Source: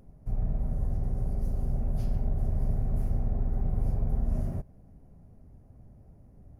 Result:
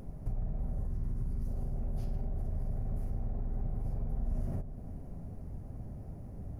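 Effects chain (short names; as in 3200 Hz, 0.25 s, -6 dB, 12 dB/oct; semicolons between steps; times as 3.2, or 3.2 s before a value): 0.87–1.47 band shelf 590 Hz -11 dB 1 oct; in parallel at +1 dB: limiter -28 dBFS, peak gain reduction 10.5 dB; on the sum: compressor 5:1, threshold -35 dBFS, peak gain reduction 14.5 dB; dark delay 98 ms, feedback 83%, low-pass 1100 Hz, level -15 dB; gain +2.5 dB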